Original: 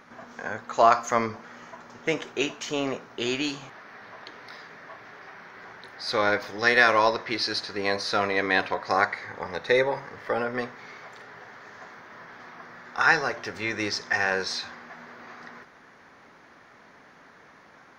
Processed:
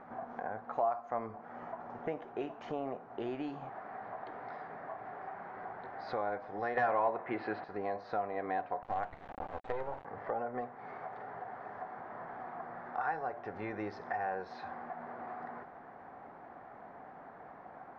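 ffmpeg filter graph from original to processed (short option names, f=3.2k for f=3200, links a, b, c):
-filter_complex "[0:a]asettb=1/sr,asplit=3[a][b][c];[a]atrim=end=6.774[d];[b]atrim=start=6.77:end=7.64,asetpts=PTS-STARTPTS,afade=t=in:d=0.004:c=qsin,afade=t=out:st=0.866:d=0.004:c=qsin,highshelf=f=3.8k:t=q:w=1.5:g=-12,aeval=exprs='0.668*sin(PI/2*2*val(0)/0.668)':c=same,highpass=110,lowpass=7.8k[e];[c]atrim=start=7.636[f];[d][e]acrossfade=d=0.004:c1=hsin:c2=qsin[g];[g][f]acrossfade=d=0.004:c1=qsin:c2=hsin,asettb=1/sr,asplit=3[h][i][j];[h]atrim=end=8.824[k];[i]atrim=start=8.82:end=10.05,asetpts=PTS-STARTPTS,afade=t=in:d=0.004:c=qsin,afade=t=out:st=1.226:d=0.004:c=qsin,acrusher=bits=3:dc=4:mix=0:aa=0.000001,equalizer=f=5.2k:t=o:w=0.25:g=-4,asoftclip=type=hard:threshold=-10.5dB[l];[j]atrim=start=10.046[m];[k][l]acrossfade=d=0.004:c1=hsin:c2=qsin[n];[n][m]acrossfade=d=0.004:c1=qsin:c2=hsin,lowpass=1.2k,equalizer=f=740:w=3.5:g=12.5,acompressor=threshold=-40dB:ratio=2.5"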